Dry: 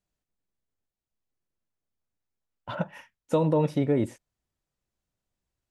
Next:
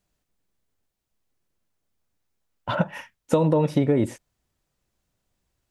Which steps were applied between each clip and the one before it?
downward compressor, threshold −25 dBFS, peak gain reduction 7 dB
level +9 dB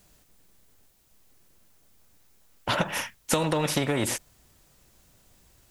high-shelf EQ 6,400 Hz +6.5 dB
every bin compressed towards the loudest bin 2 to 1
level −2 dB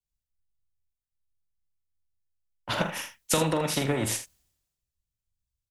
on a send: ambience of single reflections 44 ms −8.5 dB, 80 ms −9.5 dB
on the sum: multiband upward and downward expander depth 100%
level −6.5 dB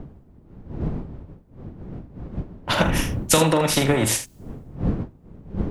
wind on the microphone 190 Hz −38 dBFS
level +7.5 dB

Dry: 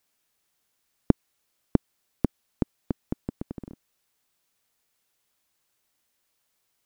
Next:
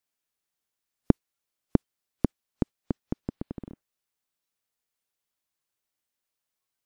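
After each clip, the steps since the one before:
noise reduction from a noise print of the clip's start 11 dB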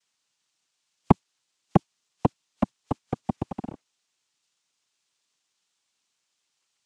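cochlear-implant simulation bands 4
level +4 dB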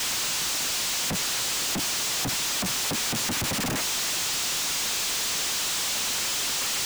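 sign of each sample alone
level +5 dB

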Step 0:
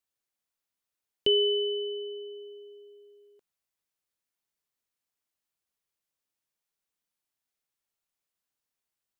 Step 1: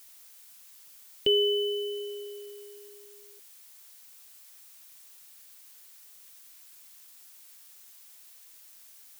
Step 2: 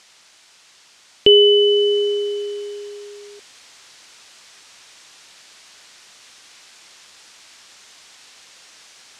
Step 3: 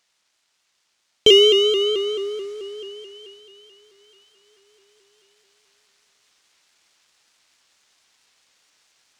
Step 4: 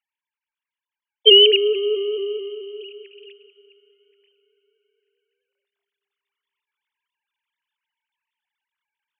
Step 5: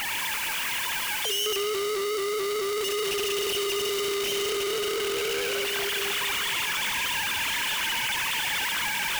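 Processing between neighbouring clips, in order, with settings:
background noise blue −53 dBFS
Bessel low-pass filter 4,800 Hz, order 4; in parallel at +2.5 dB: speech leveller within 4 dB 0.5 s; on the sum: level +8 dB
power curve on the samples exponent 1.4; dense smooth reverb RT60 5 s, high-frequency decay 1×, DRR 13.5 dB; pitch modulation by a square or saw wave saw up 4.6 Hz, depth 100 cents
three sine waves on the formant tracks; low-shelf EQ 280 Hz −8 dB; four-comb reverb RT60 3.9 s, combs from 29 ms, DRR 18 dB; level +2 dB
sign of each sample alone; delay with a high-pass on its return 68 ms, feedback 66%, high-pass 1,900 Hz, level −5.5 dB; level −3.5 dB

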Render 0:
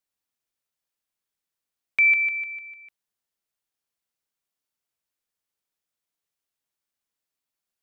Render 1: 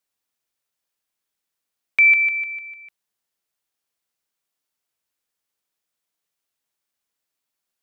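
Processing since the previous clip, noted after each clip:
low-shelf EQ 180 Hz −4.5 dB
level +4.5 dB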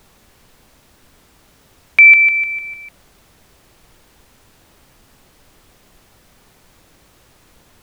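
background noise pink −59 dBFS
level +7.5 dB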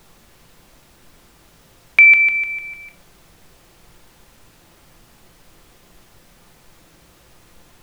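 rectangular room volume 510 cubic metres, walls furnished, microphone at 0.82 metres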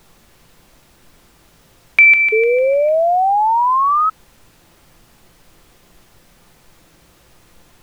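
sound drawn into the spectrogram rise, 0:02.32–0:04.10, 430–1,300 Hz −14 dBFS

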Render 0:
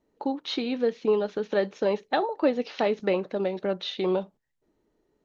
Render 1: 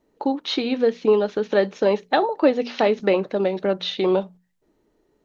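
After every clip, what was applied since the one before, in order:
mains-hum notches 60/120/180/240 Hz
level +6 dB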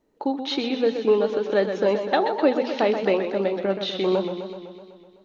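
feedback echo with a swinging delay time 126 ms, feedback 66%, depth 106 cents, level −8.5 dB
level −2.5 dB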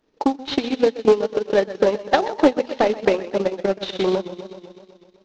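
variable-slope delta modulation 32 kbit/s
transient designer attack +8 dB, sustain −12 dB
highs frequency-modulated by the lows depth 0.22 ms

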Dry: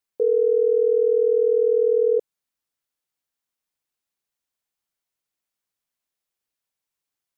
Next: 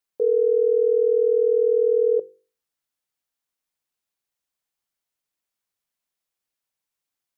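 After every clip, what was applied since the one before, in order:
mains-hum notches 50/100/150/200/250/300/350/400/450/500 Hz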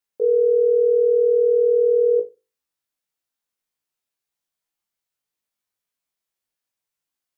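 flutter between parallel walls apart 3.2 metres, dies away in 0.22 s
level −2 dB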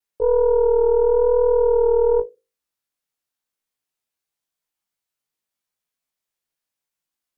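stylus tracing distortion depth 0.13 ms
pitch vibrato 0.9 Hz 34 cents

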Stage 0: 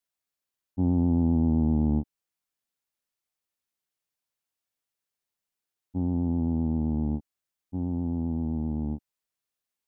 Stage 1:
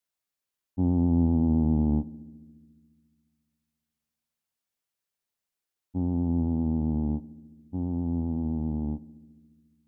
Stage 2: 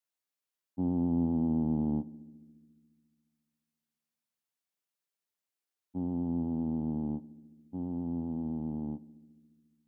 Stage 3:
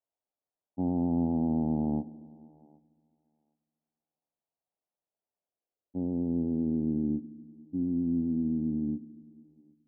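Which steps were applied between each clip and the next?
feedback echo with a low-pass in the loop 70 ms, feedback 82%, low-pass 970 Hz, level −20 dB
high-pass filter 150 Hz 12 dB per octave; level −4 dB
feedback echo with a high-pass in the loop 766 ms, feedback 15%, high-pass 490 Hz, level −22 dB; low-pass filter sweep 720 Hz → 300 Hz, 0:05.33–0:07.35

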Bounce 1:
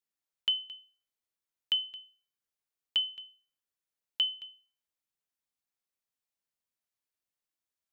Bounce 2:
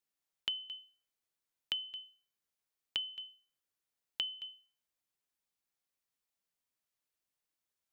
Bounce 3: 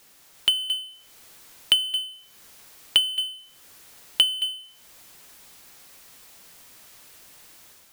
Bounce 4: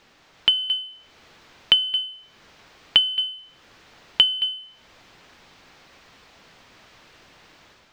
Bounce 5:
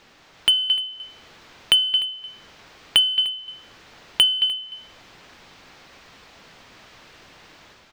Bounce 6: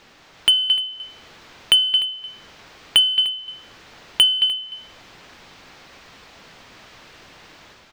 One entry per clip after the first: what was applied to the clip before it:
downward compressor, threshold −35 dBFS, peak gain reduction 10.5 dB; level +1 dB
power curve on the samples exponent 0.5; automatic gain control gain up to 5 dB; transient designer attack +8 dB, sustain −5 dB
high-frequency loss of the air 200 metres; level +6.5 dB
in parallel at −3.5 dB: wave folding −16 dBFS; on the sum: single-tap delay 300 ms −19 dB; level −1 dB
soft clipping −4.5 dBFS, distortion −25 dB; level +2.5 dB

